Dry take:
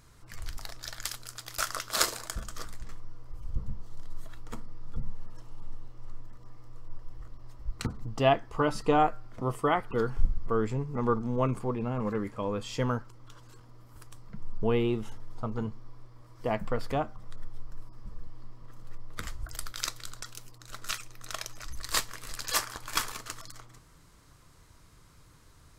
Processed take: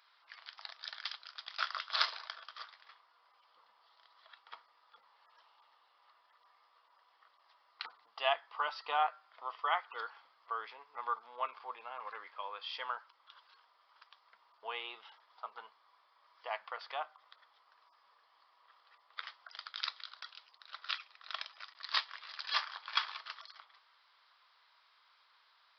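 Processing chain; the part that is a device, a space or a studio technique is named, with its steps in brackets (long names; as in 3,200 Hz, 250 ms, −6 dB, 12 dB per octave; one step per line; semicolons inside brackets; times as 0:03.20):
musical greeting card (downsampling to 11,025 Hz; high-pass filter 810 Hz 24 dB per octave; parametric band 3,400 Hz +5 dB 0.32 octaves)
level −3 dB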